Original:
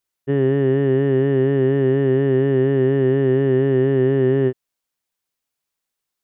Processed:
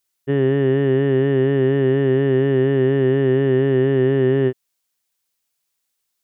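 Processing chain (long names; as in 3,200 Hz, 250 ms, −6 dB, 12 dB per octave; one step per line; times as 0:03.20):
high-shelf EQ 2,500 Hz +8 dB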